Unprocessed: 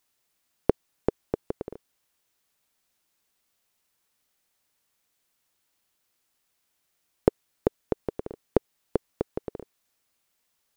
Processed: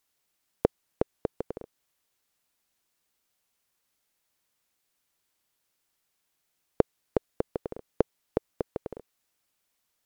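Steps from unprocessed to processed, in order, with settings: tape speed +7%; trim -2 dB

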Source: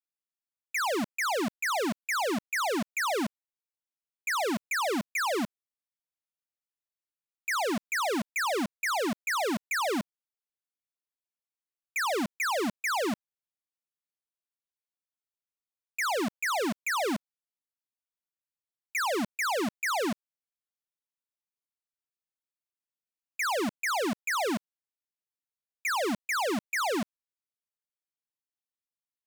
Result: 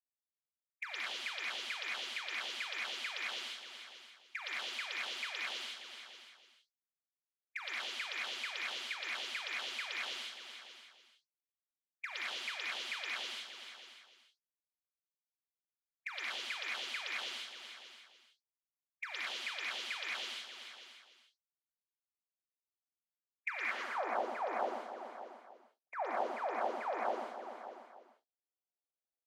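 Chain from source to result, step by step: delay that grows with frequency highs late, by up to 250 ms; level-controlled noise filter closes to 390 Hz, open at -27 dBFS; in parallel at -4 dB: Schmitt trigger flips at -36.5 dBFS; on the sum: steep high-pass 230 Hz 36 dB/octave; on a send: feedback delay 293 ms, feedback 32%, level -17.5 dB; on the sum: compression 2.5:1, threshold -49 dBFS, peak gain reduction 16 dB; band-pass sweep 3.2 kHz -> 750 Hz, 23.39–23.99 s; gated-style reverb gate 240 ms rising, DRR -4.5 dB; trim +8 dB

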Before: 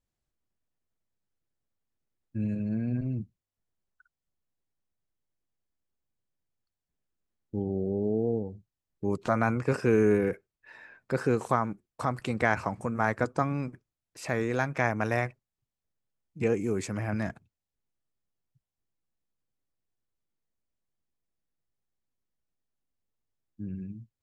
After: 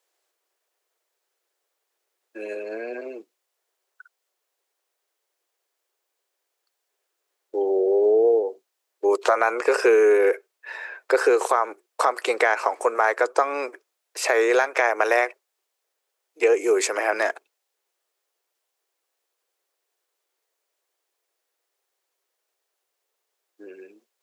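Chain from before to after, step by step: steep high-pass 380 Hz 48 dB/octave; compression, threshold -29 dBFS, peak gain reduction 9 dB; loudness maximiser +21 dB; trim -6 dB

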